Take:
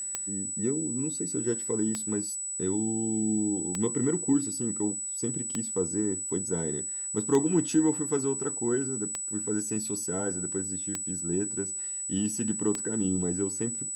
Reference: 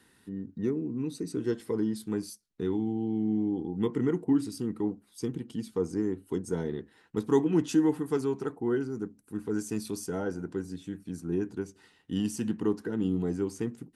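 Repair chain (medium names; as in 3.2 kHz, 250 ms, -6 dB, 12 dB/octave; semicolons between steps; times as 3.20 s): de-click; band-stop 7.9 kHz, Q 30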